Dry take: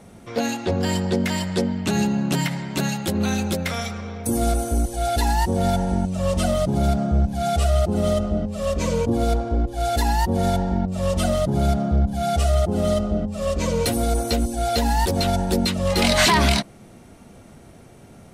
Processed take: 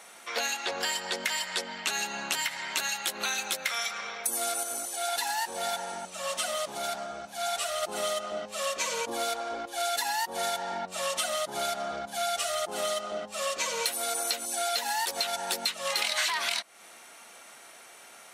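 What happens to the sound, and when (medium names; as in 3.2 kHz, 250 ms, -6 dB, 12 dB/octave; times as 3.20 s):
4.63–7.83 s: flange 1.7 Hz, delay 4.6 ms, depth 9.4 ms, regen -84%
whole clip: high-pass 1.2 kHz 12 dB/octave; compression 6:1, threshold -34 dBFS; band-stop 4.9 kHz, Q 24; trim +7 dB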